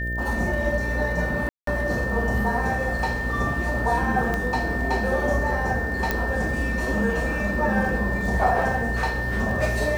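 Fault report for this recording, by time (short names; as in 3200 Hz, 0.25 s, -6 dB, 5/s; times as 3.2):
buzz 60 Hz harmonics 11 -29 dBFS
crackle 33/s
tone 1800 Hz -28 dBFS
1.49–1.67 gap 0.183 s
4.34 pop -13 dBFS
6.11 pop -9 dBFS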